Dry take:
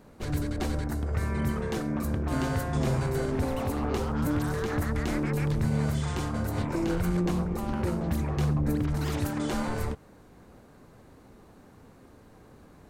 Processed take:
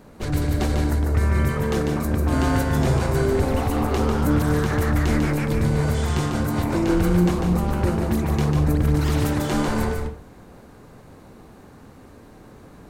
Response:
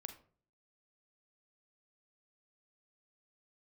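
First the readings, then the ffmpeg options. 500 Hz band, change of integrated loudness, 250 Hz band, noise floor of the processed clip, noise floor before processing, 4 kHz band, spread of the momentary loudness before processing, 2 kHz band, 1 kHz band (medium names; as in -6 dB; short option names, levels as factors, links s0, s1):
+8.0 dB, +7.5 dB, +7.0 dB, -47 dBFS, -54 dBFS, +7.5 dB, 4 LU, +7.5 dB, +7.5 dB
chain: -filter_complex "[0:a]asplit=2[s0][s1];[1:a]atrim=start_sample=2205,asetrate=48510,aresample=44100,adelay=147[s2];[s1][s2]afir=irnorm=-1:irlink=0,volume=1.19[s3];[s0][s3]amix=inputs=2:normalize=0,volume=2"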